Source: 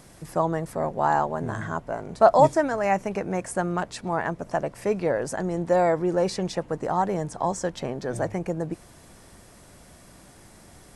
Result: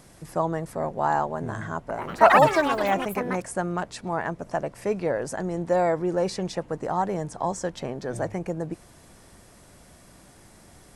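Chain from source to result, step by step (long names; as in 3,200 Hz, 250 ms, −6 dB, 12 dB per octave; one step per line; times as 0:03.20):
0:01.77–0:03.93: delay with pitch and tempo change per echo 124 ms, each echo +6 semitones, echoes 3
level −1.5 dB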